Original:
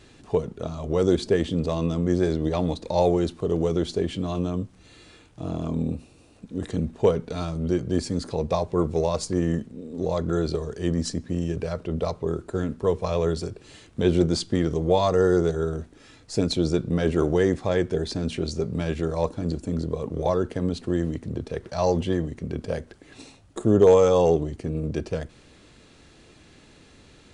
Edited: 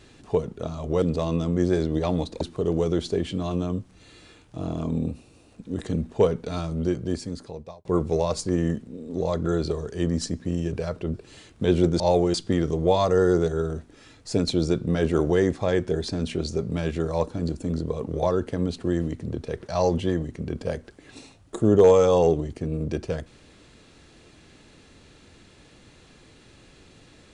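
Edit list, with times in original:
0:01.02–0:01.52: remove
0:02.91–0:03.25: move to 0:14.37
0:07.63–0:08.69: fade out
0:11.98–0:13.51: remove

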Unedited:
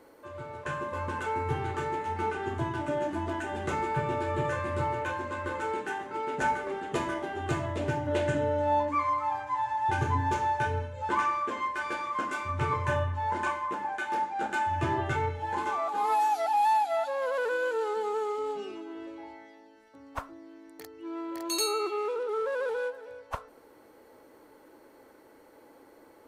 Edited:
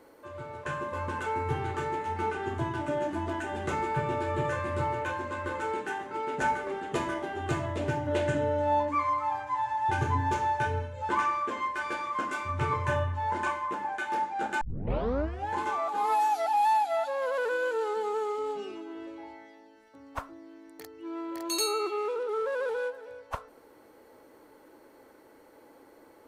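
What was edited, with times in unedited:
0:14.61: tape start 0.89 s

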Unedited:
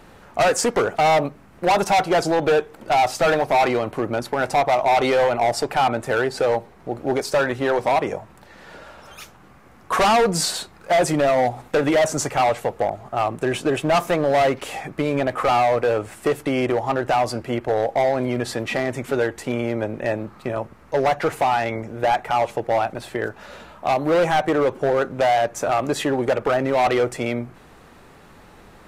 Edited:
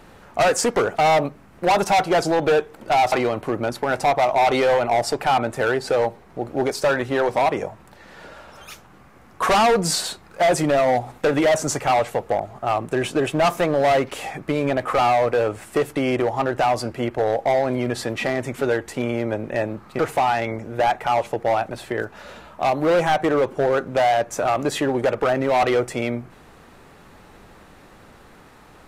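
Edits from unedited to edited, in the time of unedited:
0:03.12–0:03.62: remove
0:20.49–0:21.23: remove

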